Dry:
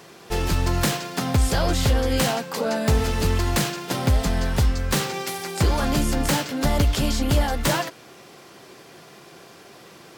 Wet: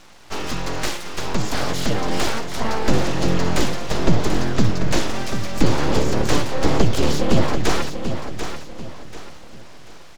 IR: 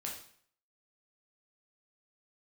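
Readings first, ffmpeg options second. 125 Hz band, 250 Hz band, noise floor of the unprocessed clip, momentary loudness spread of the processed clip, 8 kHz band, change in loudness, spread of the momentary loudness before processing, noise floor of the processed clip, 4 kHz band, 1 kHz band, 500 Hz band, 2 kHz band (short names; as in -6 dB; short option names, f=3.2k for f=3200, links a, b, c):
-0.5 dB, +3.0 dB, -47 dBFS, 12 LU, -1.5 dB, 0.0 dB, 5 LU, -37 dBFS, +0.5 dB, +1.5 dB, +2.5 dB, +1.0 dB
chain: -filter_complex "[0:a]highpass=69,acrossover=split=380|3300[a][b][c];[a]dynaudnorm=f=990:g=5:m=9dB[d];[d][b][c]amix=inputs=3:normalize=0,aresample=16000,aresample=44100,aeval=exprs='abs(val(0))':c=same,aecho=1:1:739|1478|2217|2956:0.376|0.128|0.0434|0.0148,volume=1dB"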